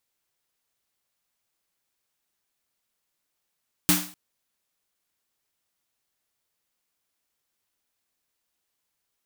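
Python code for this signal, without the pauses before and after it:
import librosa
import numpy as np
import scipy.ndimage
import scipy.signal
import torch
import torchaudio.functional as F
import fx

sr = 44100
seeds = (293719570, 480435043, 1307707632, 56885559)

y = fx.drum_snare(sr, seeds[0], length_s=0.25, hz=180.0, second_hz=300.0, noise_db=3.0, noise_from_hz=600.0, decay_s=0.38, noise_decay_s=0.43)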